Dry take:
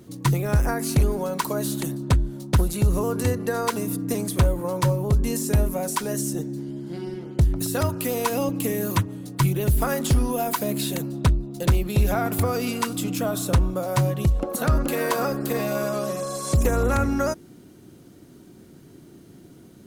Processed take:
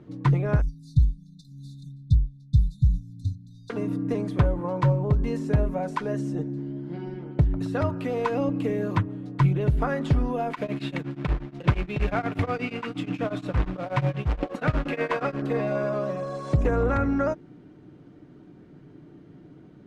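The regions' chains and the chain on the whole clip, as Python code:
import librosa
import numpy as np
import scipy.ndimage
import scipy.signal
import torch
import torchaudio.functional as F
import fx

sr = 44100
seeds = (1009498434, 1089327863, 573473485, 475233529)

y = fx.chain(x, sr, fx.brickwall_bandstop(low_hz=270.0, high_hz=3400.0),
    fx.comb(ms=2.2, depth=0.92),
    fx.upward_expand(threshold_db=-30.0, expansion=1.5), at=(0.61, 3.7))
y = fx.chain(y, sr, fx.peak_eq(hz=2400.0, db=9.0, octaves=0.96),
    fx.quant_companded(bits=4),
    fx.tremolo_abs(hz=8.4), at=(10.5, 15.42))
y = scipy.signal.sosfilt(scipy.signal.butter(2, 2200.0, 'lowpass', fs=sr, output='sos'), y)
y = y + 0.34 * np.pad(y, (int(6.7 * sr / 1000.0), 0))[:len(y)]
y = F.gain(torch.from_numpy(y), -1.5).numpy()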